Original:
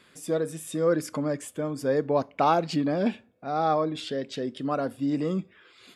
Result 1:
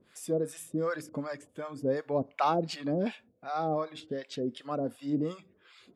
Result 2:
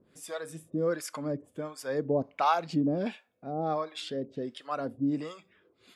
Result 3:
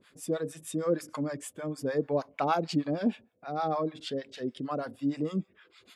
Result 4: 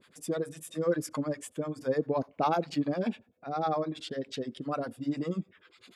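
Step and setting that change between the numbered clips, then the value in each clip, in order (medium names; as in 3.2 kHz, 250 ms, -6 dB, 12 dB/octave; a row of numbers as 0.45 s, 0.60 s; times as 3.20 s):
harmonic tremolo, rate: 2.7 Hz, 1.4 Hz, 6.5 Hz, 10 Hz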